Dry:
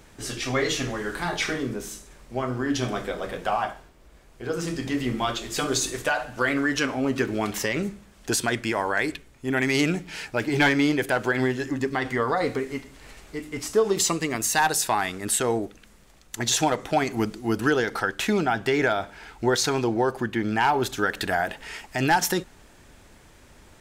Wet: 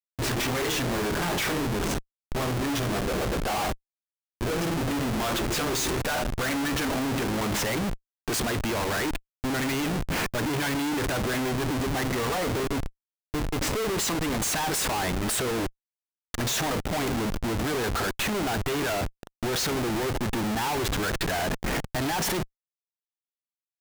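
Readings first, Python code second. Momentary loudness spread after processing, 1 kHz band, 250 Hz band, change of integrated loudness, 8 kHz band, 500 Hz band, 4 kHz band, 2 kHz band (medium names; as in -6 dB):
5 LU, -3.5 dB, -2.0 dB, -2.5 dB, -2.0 dB, -3.5 dB, 0.0 dB, -4.0 dB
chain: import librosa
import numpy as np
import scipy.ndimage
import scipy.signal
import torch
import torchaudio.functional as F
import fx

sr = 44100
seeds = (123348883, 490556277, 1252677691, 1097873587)

y = fx.schmitt(x, sr, flips_db=-34.0)
y = fx.upward_expand(y, sr, threshold_db=-43.0, expansion=1.5)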